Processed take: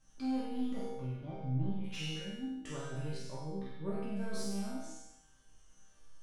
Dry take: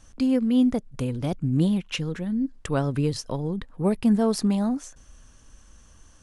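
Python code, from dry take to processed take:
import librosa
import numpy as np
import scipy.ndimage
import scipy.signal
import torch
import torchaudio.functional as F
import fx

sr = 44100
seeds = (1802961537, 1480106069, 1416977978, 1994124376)

p1 = fx.spec_trails(x, sr, decay_s=0.66)
p2 = fx.spacing_loss(p1, sr, db_at_10k=31, at=(0.86, 1.84))
p3 = 10.0 ** (-17.5 / 20.0) * np.tanh(p2 / 10.0 ** (-17.5 / 20.0))
p4 = fx.high_shelf(p3, sr, hz=2800.0, db=-10.0, at=(3.17, 4.16))
p5 = fx.resonator_bank(p4, sr, root=48, chord='minor', decay_s=0.75)
p6 = p5 + fx.room_flutter(p5, sr, wall_m=8.1, rt60_s=0.65, dry=0)
y = p6 * 10.0 ** (5.0 / 20.0)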